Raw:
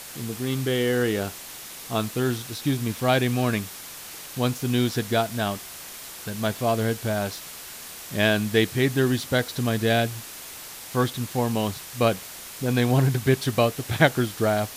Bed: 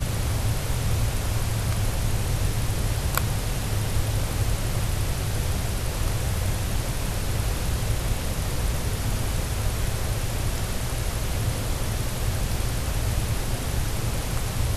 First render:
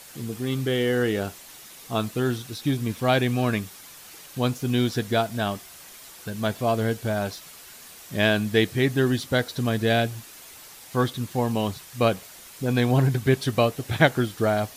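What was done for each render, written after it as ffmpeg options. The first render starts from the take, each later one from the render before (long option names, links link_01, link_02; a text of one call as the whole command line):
ffmpeg -i in.wav -af "afftdn=noise_reduction=7:noise_floor=-40" out.wav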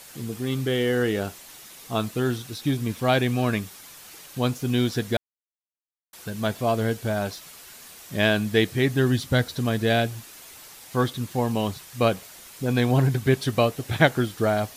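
ffmpeg -i in.wav -filter_complex "[0:a]asettb=1/sr,asplit=3[link_01][link_02][link_03];[link_01]atrim=end=8.844[link_04];[link_02]atrim=start=8.84:end=9.55,asetpts=PTS-STARTPTS,afade=type=in:duration=0.004:curve=qsin,afade=type=out:start_time=0.706:duration=0.004:curve=qsin,asubboost=boost=9:cutoff=230[link_05];[link_03]atrim=start=9.546[link_06];[link_04][link_05]acrossfade=duration=0.004:curve1=hsin:curve2=qsin[link_07];[link_07][link_06]acrossfade=duration=0.004:curve1=qsin:curve2=hsin,asplit=3[link_08][link_09][link_10];[link_08]atrim=end=5.17,asetpts=PTS-STARTPTS,afade=type=out:start_time=5.166:duration=0.004:curve=hsin[link_11];[link_09]atrim=start=5.17:end=6.13,asetpts=PTS-STARTPTS,volume=0[link_12];[link_10]atrim=start=6.13,asetpts=PTS-STARTPTS,afade=type=in:duration=0.004:curve=hsin[link_13];[link_11][link_12][link_13]concat=n=3:v=0:a=1" out.wav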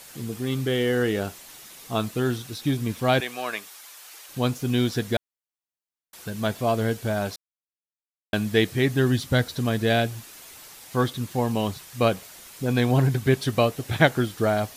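ffmpeg -i in.wav -filter_complex "[0:a]asettb=1/sr,asplit=3[link_01][link_02][link_03];[link_01]atrim=end=3.204[link_04];[link_02]atrim=start=3.2:end=4.29,asetpts=PTS-STARTPTS,afade=type=in:duration=0.004:curve=qsin,afade=type=out:start_time=1.086:duration=0.004:curve=qsin,highpass=630[link_05];[link_03]atrim=start=4.286[link_06];[link_04][link_05]acrossfade=duration=0.004:curve1=hsin:curve2=qsin[link_07];[link_07][link_06]acrossfade=duration=0.004:curve1=qsin:curve2=hsin,asplit=3[link_08][link_09][link_10];[link_08]atrim=end=7.36,asetpts=PTS-STARTPTS,afade=type=out:start_time=7.356:duration=0.004:curve=hsin[link_11];[link_09]atrim=start=7.36:end=8.33,asetpts=PTS-STARTPTS,volume=0[link_12];[link_10]atrim=start=8.33,asetpts=PTS-STARTPTS,afade=type=in:duration=0.004:curve=hsin[link_13];[link_11][link_12][link_13]concat=n=3:v=0:a=1" out.wav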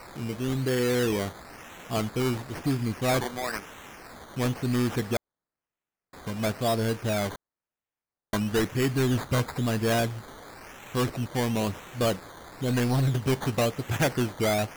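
ffmpeg -i in.wav -af "acrusher=samples=13:mix=1:aa=0.000001:lfo=1:lforange=7.8:lforate=0.99,asoftclip=type=tanh:threshold=-18.5dB" out.wav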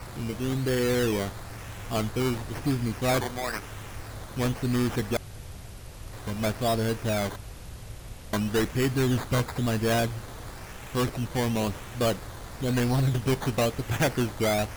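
ffmpeg -i in.wav -i bed.wav -filter_complex "[1:a]volume=-16dB[link_01];[0:a][link_01]amix=inputs=2:normalize=0" out.wav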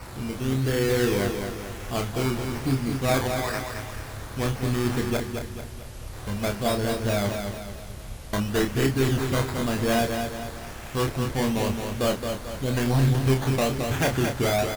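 ffmpeg -i in.wav -filter_complex "[0:a]asplit=2[link_01][link_02];[link_02]adelay=30,volume=-5dB[link_03];[link_01][link_03]amix=inputs=2:normalize=0,aecho=1:1:220|440|660|880|1100:0.501|0.226|0.101|0.0457|0.0206" out.wav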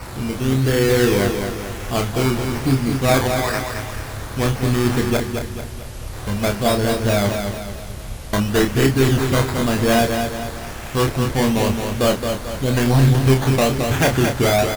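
ffmpeg -i in.wav -af "volume=7dB" out.wav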